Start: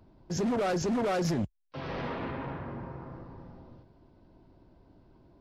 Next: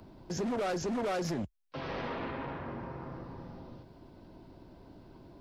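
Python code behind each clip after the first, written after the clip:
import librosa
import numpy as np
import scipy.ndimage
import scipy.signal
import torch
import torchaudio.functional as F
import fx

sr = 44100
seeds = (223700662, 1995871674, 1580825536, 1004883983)

y = fx.dynamic_eq(x, sr, hz=130.0, q=0.89, threshold_db=-43.0, ratio=4.0, max_db=-5)
y = fx.band_squash(y, sr, depth_pct=40)
y = y * librosa.db_to_amplitude(-1.5)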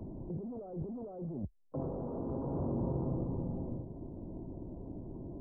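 y = fx.over_compress(x, sr, threshold_db=-41.0, ratio=-1.0)
y = scipy.ndimage.gaussian_filter1d(y, 13.0, mode='constant')
y = y * librosa.db_to_amplitude(6.0)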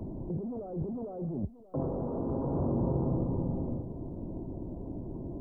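y = x + 10.0 ** (-16.5 / 20.0) * np.pad(x, (int(580 * sr / 1000.0), 0))[:len(x)]
y = y * librosa.db_to_amplitude(5.0)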